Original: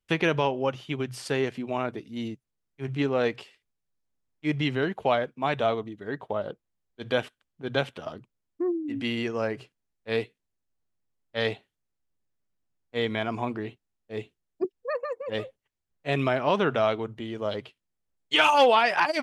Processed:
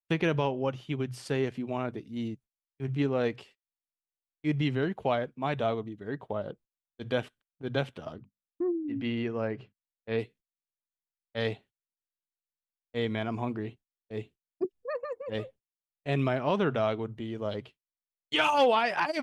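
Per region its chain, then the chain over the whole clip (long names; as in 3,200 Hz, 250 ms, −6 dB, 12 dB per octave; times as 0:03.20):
0:08.16–0:10.19: low-pass filter 3,300 Hz + mains-hum notches 50/100/150/200/250 Hz
whole clip: noise gate −50 dBFS, range −29 dB; low-shelf EQ 330 Hz +8 dB; level −6 dB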